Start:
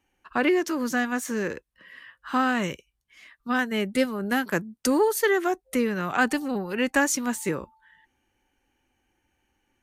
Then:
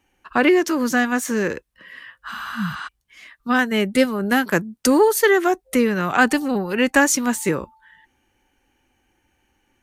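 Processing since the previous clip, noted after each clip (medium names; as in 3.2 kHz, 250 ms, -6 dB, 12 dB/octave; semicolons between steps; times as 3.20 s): spectral replace 2.34–2.85 s, 220–10000 Hz before; trim +6.5 dB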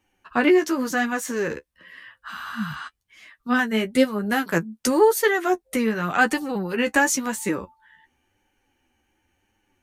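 flange 0.94 Hz, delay 8.9 ms, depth 5.1 ms, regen +24%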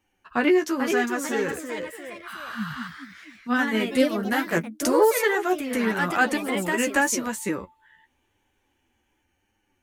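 ever faster or slower copies 479 ms, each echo +2 st, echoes 3, each echo -6 dB; trim -2.5 dB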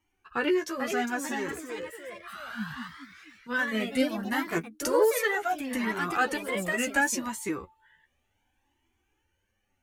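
Shepard-style flanger rising 0.68 Hz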